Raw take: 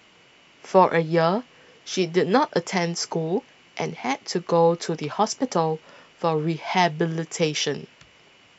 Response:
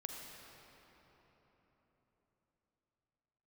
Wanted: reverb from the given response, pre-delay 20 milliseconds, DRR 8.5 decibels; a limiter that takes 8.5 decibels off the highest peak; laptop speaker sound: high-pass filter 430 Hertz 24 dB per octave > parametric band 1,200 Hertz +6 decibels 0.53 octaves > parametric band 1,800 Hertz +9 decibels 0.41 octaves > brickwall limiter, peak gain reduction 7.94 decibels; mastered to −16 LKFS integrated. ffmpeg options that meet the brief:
-filter_complex "[0:a]alimiter=limit=-12dB:level=0:latency=1,asplit=2[link_01][link_02];[1:a]atrim=start_sample=2205,adelay=20[link_03];[link_02][link_03]afir=irnorm=-1:irlink=0,volume=-7dB[link_04];[link_01][link_04]amix=inputs=2:normalize=0,highpass=frequency=430:width=0.5412,highpass=frequency=430:width=1.3066,equalizer=frequency=1200:width_type=o:width=0.53:gain=6,equalizer=frequency=1800:width_type=o:width=0.41:gain=9,volume=11dB,alimiter=limit=-3.5dB:level=0:latency=1"

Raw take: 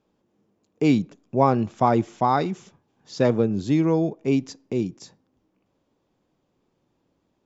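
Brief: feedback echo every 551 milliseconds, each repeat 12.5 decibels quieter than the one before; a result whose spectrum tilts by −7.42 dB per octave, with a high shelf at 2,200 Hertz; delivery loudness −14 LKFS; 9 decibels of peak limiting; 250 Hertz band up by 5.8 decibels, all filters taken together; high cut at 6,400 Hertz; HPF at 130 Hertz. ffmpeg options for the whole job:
ffmpeg -i in.wav -af "highpass=130,lowpass=6400,equalizer=frequency=250:width_type=o:gain=7.5,highshelf=frequency=2200:gain=-6.5,alimiter=limit=-13dB:level=0:latency=1,aecho=1:1:551|1102|1653:0.237|0.0569|0.0137,volume=9.5dB" out.wav

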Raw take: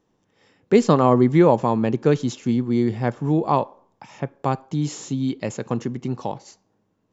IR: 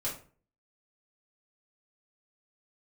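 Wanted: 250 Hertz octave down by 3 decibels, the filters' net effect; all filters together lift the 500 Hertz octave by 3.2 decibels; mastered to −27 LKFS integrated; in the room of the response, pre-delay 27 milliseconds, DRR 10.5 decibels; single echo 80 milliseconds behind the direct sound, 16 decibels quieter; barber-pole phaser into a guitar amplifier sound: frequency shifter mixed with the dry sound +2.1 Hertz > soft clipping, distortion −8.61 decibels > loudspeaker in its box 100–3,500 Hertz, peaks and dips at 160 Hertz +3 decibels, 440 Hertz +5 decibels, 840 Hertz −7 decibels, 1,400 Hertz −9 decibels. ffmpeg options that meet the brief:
-filter_complex "[0:a]equalizer=frequency=250:width_type=o:gain=-6,equalizer=frequency=500:width_type=o:gain=3,aecho=1:1:80:0.158,asplit=2[link_01][link_02];[1:a]atrim=start_sample=2205,adelay=27[link_03];[link_02][link_03]afir=irnorm=-1:irlink=0,volume=-14dB[link_04];[link_01][link_04]amix=inputs=2:normalize=0,asplit=2[link_05][link_06];[link_06]afreqshift=2.1[link_07];[link_05][link_07]amix=inputs=2:normalize=1,asoftclip=threshold=-18.5dB,highpass=100,equalizer=frequency=160:width_type=q:width=4:gain=3,equalizer=frequency=440:width_type=q:width=4:gain=5,equalizer=frequency=840:width_type=q:width=4:gain=-7,equalizer=frequency=1400:width_type=q:width=4:gain=-9,lowpass=frequency=3500:width=0.5412,lowpass=frequency=3500:width=1.3066,volume=0.5dB"

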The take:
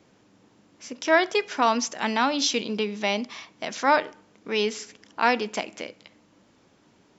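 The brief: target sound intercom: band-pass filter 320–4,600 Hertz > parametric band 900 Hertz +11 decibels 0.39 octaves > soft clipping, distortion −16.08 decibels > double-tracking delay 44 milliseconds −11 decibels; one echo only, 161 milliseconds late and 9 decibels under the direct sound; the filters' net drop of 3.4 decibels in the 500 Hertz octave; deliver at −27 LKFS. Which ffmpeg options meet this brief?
ffmpeg -i in.wav -filter_complex "[0:a]highpass=320,lowpass=4600,equalizer=frequency=500:width_type=o:gain=-5.5,equalizer=frequency=900:width_type=o:width=0.39:gain=11,aecho=1:1:161:0.355,asoftclip=threshold=-9.5dB,asplit=2[link_01][link_02];[link_02]adelay=44,volume=-11dB[link_03];[link_01][link_03]amix=inputs=2:normalize=0,volume=-3.5dB" out.wav

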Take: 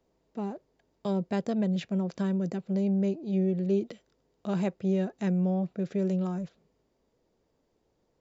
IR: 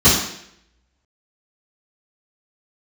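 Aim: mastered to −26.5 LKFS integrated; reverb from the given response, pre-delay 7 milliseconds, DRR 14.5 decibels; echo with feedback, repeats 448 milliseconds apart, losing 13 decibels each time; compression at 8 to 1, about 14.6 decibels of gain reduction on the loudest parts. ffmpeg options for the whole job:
-filter_complex "[0:a]acompressor=threshold=-39dB:ratio=8,aecho=1:1:448|896|1344:0.224|0.0493|0.0108,asplit=2[link_01][link_02];[1:a]atrim=start_sample=2205,adelay=7[link_03];[link_02][link_03]afir=irnorm=-1:irlink=0,volume=-38.5dB[link_04];[link_01][link_04]amix=inputs=2:normalize=0,volume=14.5dB"

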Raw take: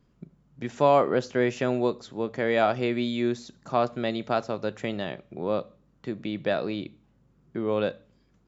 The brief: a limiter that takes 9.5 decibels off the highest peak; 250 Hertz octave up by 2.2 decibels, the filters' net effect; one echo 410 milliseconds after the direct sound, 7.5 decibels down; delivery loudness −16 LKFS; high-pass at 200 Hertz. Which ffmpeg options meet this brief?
ffmpeg -i in.wav -af "highpass=200,equalizer=frequency=250:width_type=o:gain=4.5,alimiter=limit=-17.5dB:level=0:latency=1,aecho=1:1:410:0.422,volume=13.5dB" out.wav

